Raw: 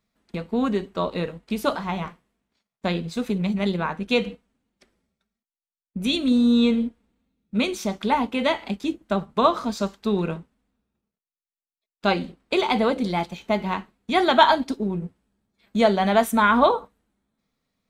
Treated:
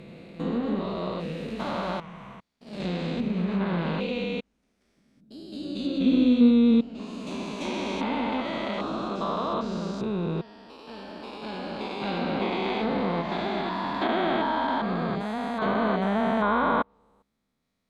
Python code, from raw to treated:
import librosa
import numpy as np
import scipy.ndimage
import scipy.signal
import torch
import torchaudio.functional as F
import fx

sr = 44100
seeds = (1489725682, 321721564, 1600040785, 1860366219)

y = fx.spec_steps(x, sr, hold_ms=400)
y = fx.echo_pitch(y, sr, ms=86, semitones=1, count=3, db_per_echo=-6.0)
y = fx.env_lowpass_down(y, sr, base_hz=2900.0, full_db=-22.0)